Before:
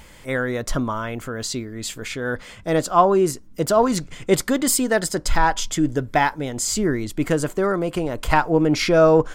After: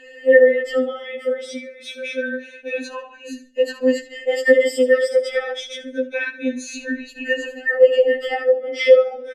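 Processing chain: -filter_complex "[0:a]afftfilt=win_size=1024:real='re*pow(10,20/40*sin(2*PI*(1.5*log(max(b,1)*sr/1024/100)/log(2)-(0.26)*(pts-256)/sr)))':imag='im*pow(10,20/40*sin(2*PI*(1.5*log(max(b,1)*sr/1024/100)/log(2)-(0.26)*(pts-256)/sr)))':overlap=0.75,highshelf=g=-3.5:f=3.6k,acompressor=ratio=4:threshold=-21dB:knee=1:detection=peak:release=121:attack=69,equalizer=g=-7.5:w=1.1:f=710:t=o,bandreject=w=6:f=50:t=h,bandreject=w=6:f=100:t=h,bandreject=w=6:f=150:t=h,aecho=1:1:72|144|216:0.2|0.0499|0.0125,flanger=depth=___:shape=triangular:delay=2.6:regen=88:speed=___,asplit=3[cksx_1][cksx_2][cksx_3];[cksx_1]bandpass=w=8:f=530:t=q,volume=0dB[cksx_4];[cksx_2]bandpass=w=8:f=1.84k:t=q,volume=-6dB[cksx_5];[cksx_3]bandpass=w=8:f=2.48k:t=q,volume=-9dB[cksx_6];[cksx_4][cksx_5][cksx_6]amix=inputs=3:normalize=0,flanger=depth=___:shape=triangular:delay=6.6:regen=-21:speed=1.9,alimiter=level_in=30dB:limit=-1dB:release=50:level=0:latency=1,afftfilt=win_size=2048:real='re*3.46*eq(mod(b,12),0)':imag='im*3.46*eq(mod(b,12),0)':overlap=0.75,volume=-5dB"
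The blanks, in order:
9.5, 0.35, 6.1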